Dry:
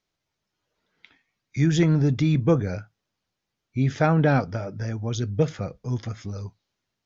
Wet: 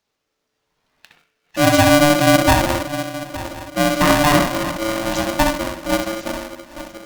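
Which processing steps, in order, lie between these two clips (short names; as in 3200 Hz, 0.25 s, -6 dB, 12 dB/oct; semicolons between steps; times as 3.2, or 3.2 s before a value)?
regenerating reverse delay 0.436 s, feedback 58%, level -12 dB; darkening echo 64 ms, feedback 25%, low-pass 4700 Hz, level -4.5 dB; polarity switched at an audio rate 440 Hz; gain +4.5 dB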